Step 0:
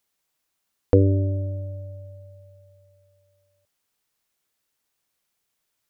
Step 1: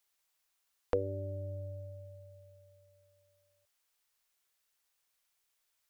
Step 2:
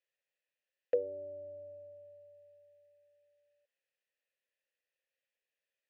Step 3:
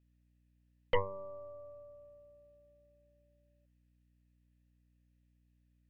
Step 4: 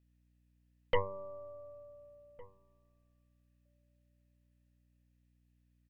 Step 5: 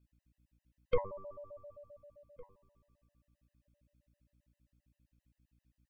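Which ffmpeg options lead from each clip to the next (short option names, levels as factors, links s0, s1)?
-filter_complex "[0:a]equalizer=f=190:w=0.59:g=-14,acrossover=split=470[s0][s1];[s0]acompressor=threshold=0.0158:ratio=6[s2];[s2][s1]amix=inputs=2:normalize=0,volume=0.794"
-filter_complex "[0:a]asplit=3[s0][s1][s2];[s0]bandpass=f=530:t=q:w=8,volume=1[s3];[s1]bandpass=f=1840:t=q:w=8,volume=0.501[s4];[s2]bandpass=f=2480:t=q:w=8,volume=0.355[s5];[s3][s4][s5]amix=inputs=3:normalize=0,volume=2"
-af "aeval=exprs='0.106*(cos(1*acos(clip(val(0)/0.106,-1,1)))-cos(1*PI/2))+0.0422*(cos(6*acos(clip(val(0)/0.106,-1,1)))-cos(6*PI/2))':c=same,aeval=exprs='val(0)+0.000398*(sin(2*PI*60*n/s)+sin(2*PI*2*60*n/s)/2+sin(2*PI*3*60*n/s)/3+sin(2*PI*4*60*n/s)/4+sin(2*PI*5*60*n/s)/5)':c=same,volume=0.794"
-filter_complex "[0:a]asplit=2[s0][s1];[s1]adelay=1458,volume=0.0794,highshelf=f=4000:g=-32.8[s2];[s0][s2]amix=inputs=2:normalize=0"
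-af "afftfilt=real='re*gt(sin(2*PI*7.6*pts/sr)*(1-2*mod(floor(b*sr/1024/520),2)),0)':imag='im*gt(sin(2*PI*7.6*pts/sr)*(1-2*mod(floor(b*sr/1024/520),2)),0)':win_size=1024:overlap=0.75,volume=1.19"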